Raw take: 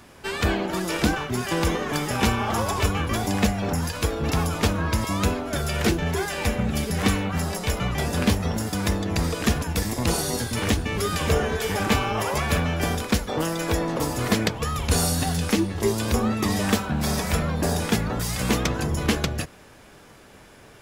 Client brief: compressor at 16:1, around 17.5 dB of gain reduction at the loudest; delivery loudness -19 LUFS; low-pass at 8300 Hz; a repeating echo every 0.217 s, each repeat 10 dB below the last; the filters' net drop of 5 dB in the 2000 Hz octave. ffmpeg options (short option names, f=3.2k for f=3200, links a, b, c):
-af "lowpass=8.3k,equalizer=f=2k:t=o:g=-6.5,acompressor=threshold=-34dB:ratio=16,aecho=1:1:217|434|651|868:0.316|0.101|0.0324|0.0104,volume=19dB"